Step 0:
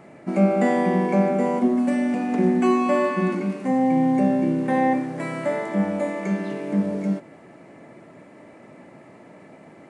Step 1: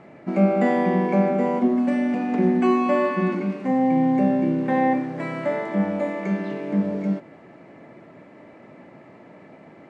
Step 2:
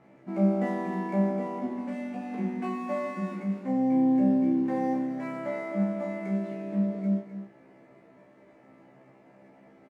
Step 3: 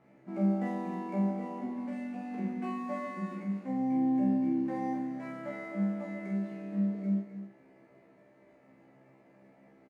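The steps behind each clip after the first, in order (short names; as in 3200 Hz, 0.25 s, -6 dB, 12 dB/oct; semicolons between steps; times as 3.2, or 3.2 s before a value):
LPF 4500 Hz 12 dB/oct
median filter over 9 samples; resonator 66 Hz, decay 0.3 s, harmonics all, mix 100%; echo 0.257 s -10.5 dB; gain -2 dB
doubler 45 ms -5.5 dB; gain -6 dB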